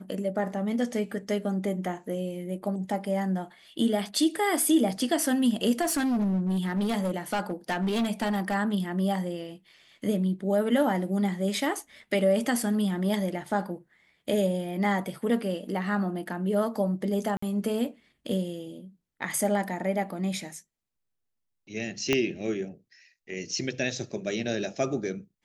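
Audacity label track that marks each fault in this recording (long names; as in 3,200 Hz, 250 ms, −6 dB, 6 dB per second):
5.810000	8.550000	clipping −23 dBFS
17.370000	17.420000	drop-out 54 ms
22.130000	22.130000	click −10 dBFS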